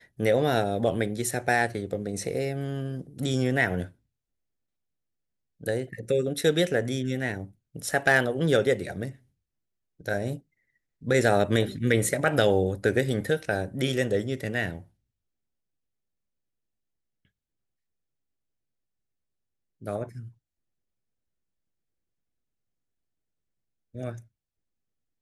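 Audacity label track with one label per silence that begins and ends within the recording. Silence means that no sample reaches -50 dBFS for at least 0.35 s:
3.920000	5.600000	silence
9.170000	10.000000	silence
10.400000	11.010000	silence
14.860000	19.810000	silence
20.320000	23.940000	silence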